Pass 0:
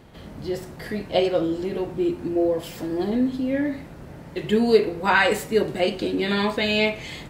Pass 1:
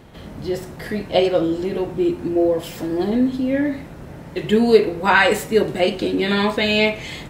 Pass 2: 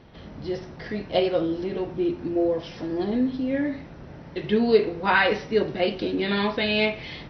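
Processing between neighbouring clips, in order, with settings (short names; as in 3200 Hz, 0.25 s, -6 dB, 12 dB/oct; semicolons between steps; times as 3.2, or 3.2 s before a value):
notch 4600 Hz, Q 24; gain +4 dB
gain -5.5 dB; MP2 48 kbps 48000 Hz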